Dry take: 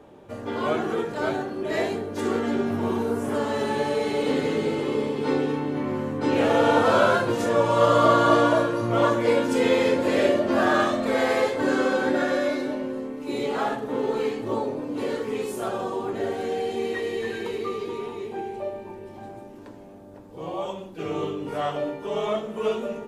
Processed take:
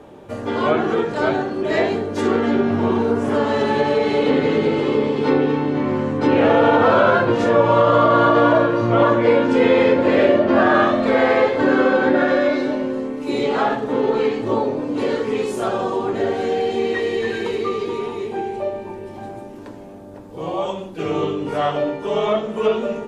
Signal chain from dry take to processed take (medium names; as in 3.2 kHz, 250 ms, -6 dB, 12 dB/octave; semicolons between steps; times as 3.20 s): low-pass that closes with the level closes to 2.9 kHz, closed at -19 dBFS; peak limiter -12 dBFS, peak gain reduction 7 dB; trim +7 dB